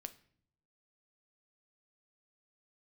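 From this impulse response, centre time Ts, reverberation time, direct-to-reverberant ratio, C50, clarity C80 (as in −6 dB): 4 ms, non-exponential decay, 9.5 dB, 16.5 dB, 20.5 dB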